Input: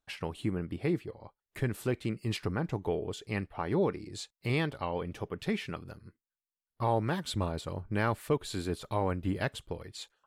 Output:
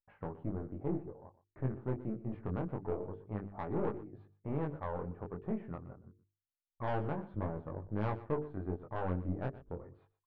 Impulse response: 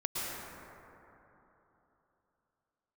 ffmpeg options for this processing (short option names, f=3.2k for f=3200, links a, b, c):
-filter_complex "[0:a]anlmdn=0.000398,lowpass=f=1.2k:w=0.5412,lowpass=f=1.2k:w=1.3066,bandreject=f=50:t=h:w=6,bandreject=f=100:t=h:w=6,bandreject=f=150:t=h:w=6,bandreject=f=200:t=h:w=6,bandreject=f=250:t=h:w=6,bandreject=f=300:t=h:w=6,bandreject=f=350:t=h:w=6,bandreject=f=400:t=h:w=6,bandreject=f=450:t=h:w=6,aeval=exprs='(tanh(17.8*val(0)+0.6)-tanh(0.6))/17.8':c=same,flanger=delay=19:depth=4:speed=0.26,asplit=2[a][b];[b]aecho=0:1:121:0.141[c];[a][c]amix=inputs=2:normalize=0,volume=1.5dB"